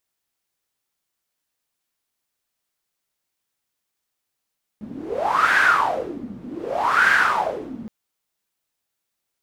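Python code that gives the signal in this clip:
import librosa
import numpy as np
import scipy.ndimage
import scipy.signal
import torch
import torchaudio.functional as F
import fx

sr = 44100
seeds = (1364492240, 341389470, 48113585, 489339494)

y = fx.wind(sr, seeds[0], length_s=3.07, low_hz=220.0, high_hz=1600.0, q=8.3, gusts=2, swing_db=18.5)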